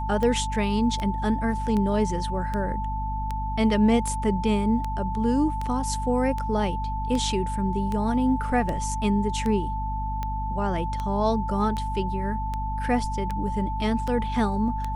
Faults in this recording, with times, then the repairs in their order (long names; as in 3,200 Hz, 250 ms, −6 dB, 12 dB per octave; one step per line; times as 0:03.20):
mains hum 50 Hz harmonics 5 −30 dBFS
scratch tick 78 rpm −17 dBFS
whistle 880 Hz −30 dBFS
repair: click removal
notch filter 880 Hz, Q 30
hum removal 50 Hz, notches 5